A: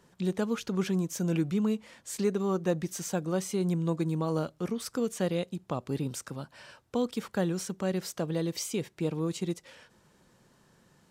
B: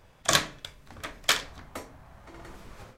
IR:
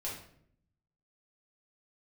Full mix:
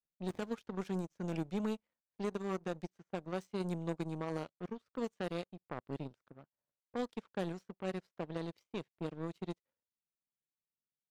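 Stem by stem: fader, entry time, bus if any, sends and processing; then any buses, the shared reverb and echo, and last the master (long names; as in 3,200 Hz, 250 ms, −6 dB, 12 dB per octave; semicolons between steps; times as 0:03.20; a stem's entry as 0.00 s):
−0.5 dB, 0.00 s, no send, low-pass that shuts in the quiet parts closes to 450 Hz, open at −24 dBFS
−13.5 dB, 0.00 s, no send, low-shelf EQ 470 Hz +11 dB; flanger 0.21 Hz, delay 4.4 ms, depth 5 ms, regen +76%; sample-rate reduction 1,400 Hz; automatic ducking −20 dB, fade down 1.95 s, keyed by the first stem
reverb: not used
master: high-shelf EQ 11,000 Hz −5.5 dB; power curve on the samples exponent 2; brickwall limiter −25.5 dBFS, peak gain reduction 9 dB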